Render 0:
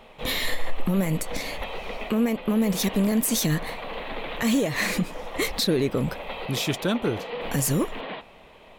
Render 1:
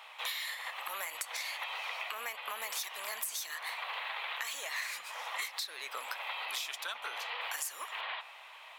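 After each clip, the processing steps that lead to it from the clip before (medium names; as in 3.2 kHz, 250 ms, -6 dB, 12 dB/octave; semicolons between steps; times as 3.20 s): high-pass 930 Hz 24 dB/octave; compression 12:1, threshold -38 dBFS, peak gain reduction 17 dB; on a send at -19 dB: reverberation RT60 2.8 s, pre-delay 6 ms; on the sum: trim +3 dB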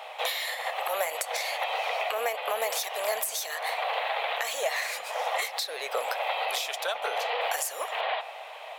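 high-order bell 580 Hz +14 dB 1.1 oct; trim +6 dB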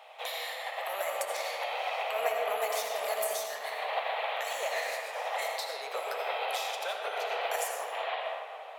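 algorithmic reverb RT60 3.8 s, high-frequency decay 0.3×, pre-delay 40 ms, DRR -1.5 dB; upward expansion 1.5:1, over -34 dBFS; trim -4.5 dB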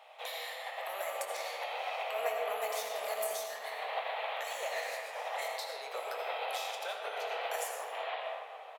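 doubling 23 ms -11 dB; trim -4.5 dB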